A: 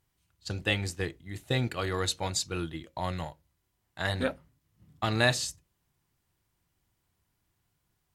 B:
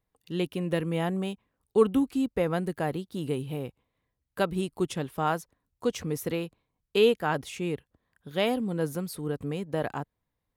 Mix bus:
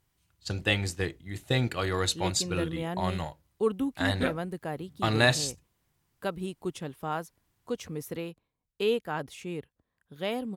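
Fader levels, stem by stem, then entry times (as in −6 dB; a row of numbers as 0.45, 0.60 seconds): +2.0, −5.5 decibels; 0.00, 1.85 seconds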